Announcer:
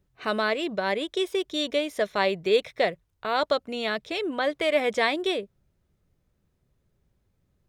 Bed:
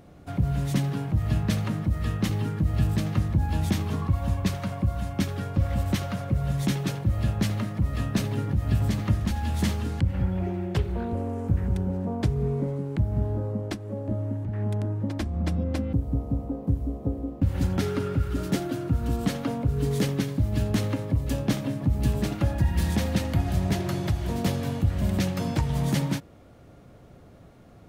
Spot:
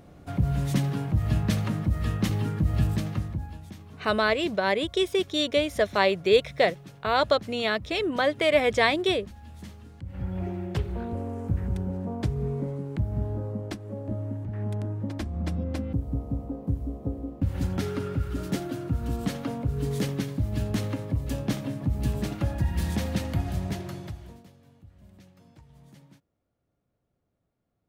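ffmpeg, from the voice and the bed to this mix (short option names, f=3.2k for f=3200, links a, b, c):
-filter_complex "[0:a]adelay=3800,volume=2dB[a];[1:a]volume=15dB,afade=t=out:st=2.78:d=0.82:silence=0.125893,afade=t=in:st=10.01:d=0.4:silence=0.177828,afade=t=out:st=23.37:d=1.09:silence=0.0562341[b];[a][b]amix=inputs=2:normalize=0"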